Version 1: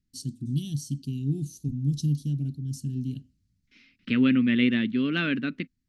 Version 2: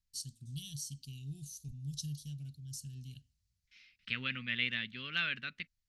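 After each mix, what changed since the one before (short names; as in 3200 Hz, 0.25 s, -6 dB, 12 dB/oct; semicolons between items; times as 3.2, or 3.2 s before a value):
master: add passive tone stack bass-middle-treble 10-0-10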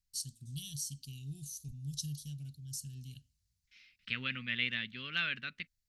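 first voice: add high shelf 7100 Hz +7 dB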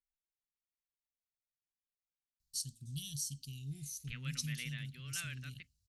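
first voice: entry +2.40 s; second voice -11.5 dB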